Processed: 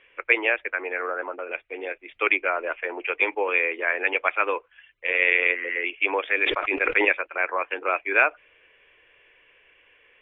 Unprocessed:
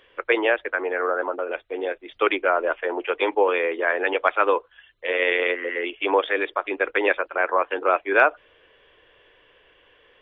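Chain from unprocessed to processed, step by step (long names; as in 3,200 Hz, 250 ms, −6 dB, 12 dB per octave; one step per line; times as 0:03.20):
low-pass with resonance 2,400 Hz, resonance Q 5.1
0:06.36–0:07.05: level that may fall only so fast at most 33 dB per second
level −7 dB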